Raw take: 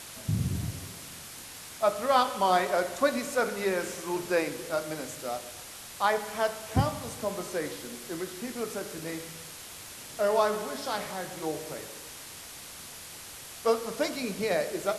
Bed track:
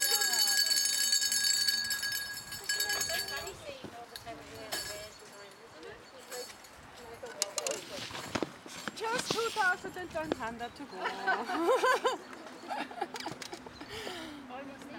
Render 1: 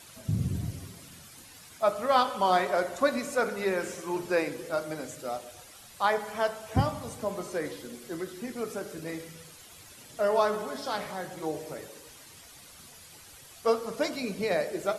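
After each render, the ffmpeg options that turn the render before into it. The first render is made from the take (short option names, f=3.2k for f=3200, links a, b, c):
-af "afftdn=nr=10:nf=-45"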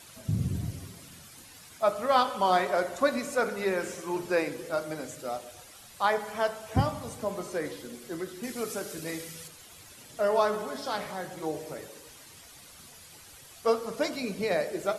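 -filter_complex "[0:a]asettb=1/sr,asplit=3[a][b][c];[a]atrim=end=8.434[d];[b]atrim=start=8.43:end=9.48,asetpts=PTS-STARTPTS,afade=t=in:d=0.004:c=qsin,afade=t=out:st=1.046:d=0.004:c=qsin,highshelf=f=2.8k:g=8[e];[c]atrim=start=9.476[f];[d][e]acrossfade=d=0.004:c1=hsin:c2=qsin[g];[g][f]acrossfade=d=0.004:c1=qsin:c2=hsin"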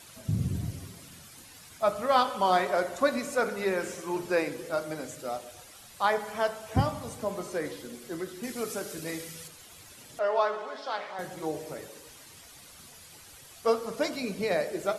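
-filter_complex "[0:a]asettb=1/sr,asplit=3[a][b][c];[a]atrim=end=1.574[d];[b]atrim=start=1.57:end=2.02,asetpts=PTS-STARTPTS,afade=t=in:d=0.004:c=qsin,afade=t=out:st=0.446:d=0.004:c=qsin,asubboost=boost=8.5:cutoff=230[e];[c]atrim=start=2.016[f];[d][e]acrossfade=d=0.004:c1=hsin:c2=qsin[g];[g][f]acrossfade=d=0.004:c1=qsin:c2=hsin,asettb=1/sr,asplit=3[h][i][j];[h]atrim=end=10.194[k];[i]atrim=start=10.19:end=11.19,asetpts=PTS-STARTPTS,afade=t=in:d=0.004:c=qsin,afade=t=out:st=0.996:d=0.004:c=qsin,highpass=480,lowpass=3.9k[l];[j]atrim=start=11.186[m];[k][l]acrossfade=d=0.004:c1=hsin:c2=qsin[n];[n][m]acrossfade=d=0.004:c1=qsin:c2=hsin"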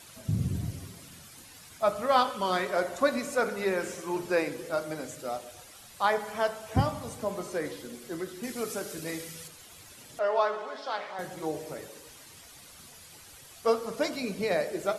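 -filter_complex "[0:a]asettb=1/sr,asplit=3[a][b][c];[a]atrim=end=2.314[d];[b]atrim=start=2.31:end=2.76,asetpts=PTS-STARTPTS,afade=t=in:d=0.004:c=qsin,afade=t=out:st=0.446:d=0.004:c=qsin,equalizer=f=770:t=o:w=0.63:g=-9.5[e];[c]atrim=start=2.756[f];[d][e]acrossfade=d=0.004:c1=hsin:c2=qsin[g];[g][f]acrossfade=d=0.004:c1=qsin:c2=hsin"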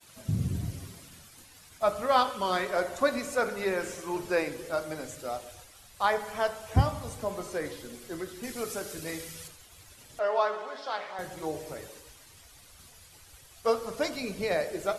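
-af "agate=range=-33dB:threshold=-46dB:ratio=3:detection=peak,asubboost=boost=4:cutoff=85"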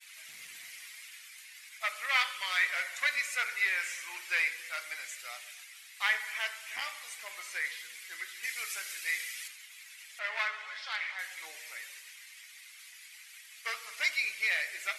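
-af "aeval=exprs='clip(val(0),-1,0.0596)':c=same,highpass=f=2.1k:t=q:w=4.4"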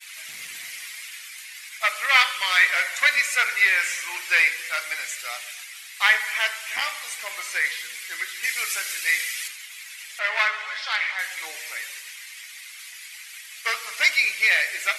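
-af "volume=11dB"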